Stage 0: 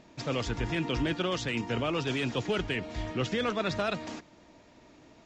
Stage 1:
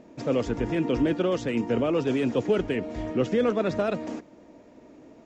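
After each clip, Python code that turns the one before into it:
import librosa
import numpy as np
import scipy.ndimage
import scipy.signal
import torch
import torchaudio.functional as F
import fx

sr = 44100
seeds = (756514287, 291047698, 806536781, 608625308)

y = fx.graphic_eq(x, sr, hz=(250, 500, 4000), db=(8, 9, -6))
y = y * 10.0 ** (-1.5 / 20.0)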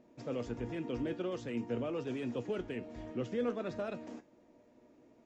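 y = fx.comb_fb(x, sr, f0_hz=120.0, decay_s=0.23, harmonics='all', damping=0.0, mix_pct=60)
y = y * 10.0 ** (-7.5 / 20.0)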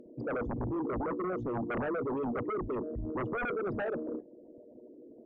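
y = fx.envelope_sharpen(x, sr, power=3.0)
y = fx.fold_sine(y, sr, drive_db=11, ceiling_db=-25.5)
y = y * 10.0 ** (-4.5 / 20.0)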